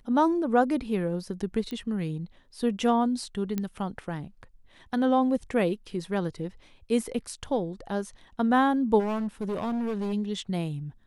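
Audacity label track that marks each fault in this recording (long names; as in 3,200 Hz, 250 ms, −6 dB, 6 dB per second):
1.710000	1.710000	click −23 dBFS
3.580000	3.580000	click −16 dBFS
8.990000	10.140000	clipping −26.5 dBFS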